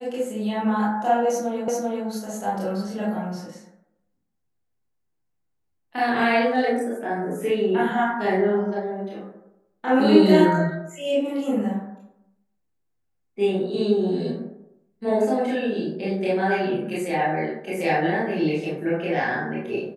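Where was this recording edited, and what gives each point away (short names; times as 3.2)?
1.68 repeat of the last 0.39 s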